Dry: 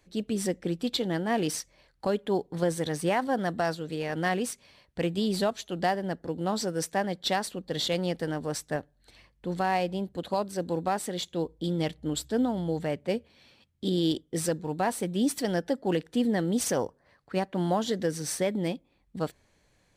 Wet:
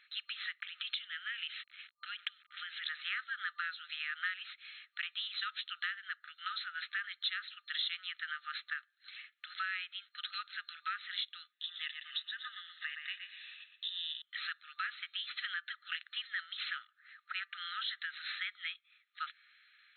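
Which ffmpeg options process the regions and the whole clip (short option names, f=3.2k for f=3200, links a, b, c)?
-filter_complex "[0:a]asettb=1/sr,asplit=3[a][b][c];[a]atrim=end=0.604[d];[b]atrim=start=0.6:end=2.88,asetpts=PTS-STARTPTS,afade=t=in:d=0.004:c=qsin,afade=t=out:st=2.276:d=0.004:c=qsin,acompressor=threshold=-36dB:ratio=5:attack=3.2:release=140:knee=1:detection=peak,lowpass=f=3k:t=q:w=2.8,aeval=exprs='val(0)*gte(abs(val(0)),0.00168)':c=same[e];[c]atrim=start=2.876[f];[d][e]acrossfade=d=0.004:c1=hsin:c2=qsin[g];[g][f]acrossfade=d=0.004:c1=qsin:c2=hsin,asettb=1/sr,asplit=3[h][i][j];[h]atrim=end=11.524[k];[i]atrim=start=11.52:end=14.22,asetpts=PTS-STARTPTS,afade=t=in:d=0.004:c=qsin,afade=t=out:st=2.696:d=0.004:c=qsin,acompressor=threshold=-32dB:ratio=2:attack=3.2:release=140:knee=1:detection=peak,aecho=1:1:1.1:0.65,atrim=end_sample=119070,asplit=2[l][m];[m]adelay=118,lowpass=f=4.6k:p=1,volume=-7.5dB,asplit=2[n][o];[o]adelay=118,lowpass=f=4.6k:p=1,volume=0.37,asplit=2[p][q];[q]adelay=118,lowpass=f=4.6k:p=1,volume=0.37,asplit=2[r][s];[s]adelay=118,lowpass=f=4.6k:p=1,volume=0.37[t];[l][n][p][r][t]amix=inputs=5:normalize=0,atrim=end_sample=119070[u];[j]atrim=start=14.216[v];[k][u]acrossfade=d=0.004:c1=hsin:c2=qsin[w];[w][v]acrossfade=d=0.004:c1=qsin:c2=hsin,afftfilt=real='re*between(b*sr/4096,1200,4200)':imag='im*between(b*sr/4096,1200,4200)':win_size=4096:overlap=0.75,acompressor=threshold=-47dB:ratio=3,volume=9dB"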